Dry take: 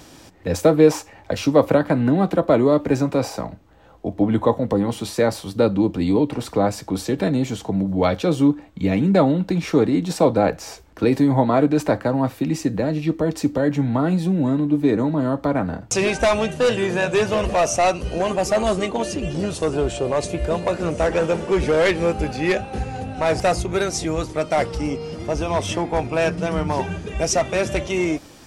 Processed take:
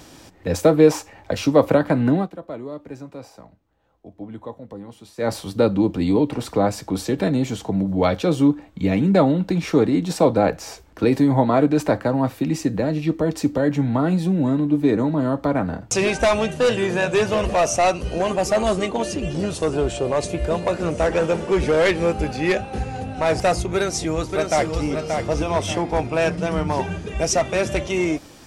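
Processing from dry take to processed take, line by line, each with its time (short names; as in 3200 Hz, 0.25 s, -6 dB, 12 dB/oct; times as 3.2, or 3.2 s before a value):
2.15–5.31 dip -16.5 dB, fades 0.14 s
23.74–24.85 echo throw 0.58 s, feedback 35%, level -5 dB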